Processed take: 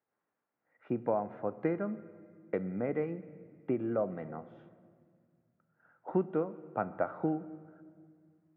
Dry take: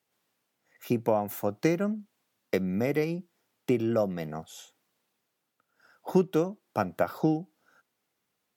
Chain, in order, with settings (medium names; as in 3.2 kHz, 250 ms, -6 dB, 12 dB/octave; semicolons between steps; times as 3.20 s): low-pass 1.8 kHz 24 dB/octave; bass shelf 200 Hz -6 dB; on a send: reverberation RT60 1.9 s, pre-delay 4 ms, DRR 13 dB; on the sum: trim -4.5 dB